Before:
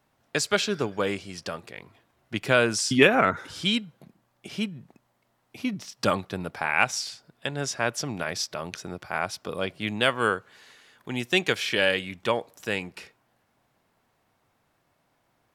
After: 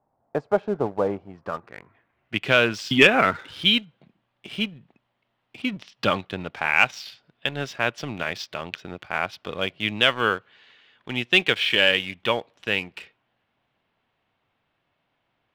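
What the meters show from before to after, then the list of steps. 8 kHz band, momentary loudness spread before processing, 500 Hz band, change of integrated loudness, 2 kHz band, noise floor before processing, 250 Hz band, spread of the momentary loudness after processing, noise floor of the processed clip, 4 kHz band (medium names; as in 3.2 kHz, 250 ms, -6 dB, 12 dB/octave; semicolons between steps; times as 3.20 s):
-10.5 dB, 14 LU, +1.5 dB, +3.5 dB, +4.0 dB, -71 dBFS, +0.5 dB, 16 LU, -75 dBFS, +6.0 dB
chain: low-pass sweep 800 Hz -> 3.1 kHz, 1.16–2.45 s; waveshaping leveller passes 1; trim -3 dB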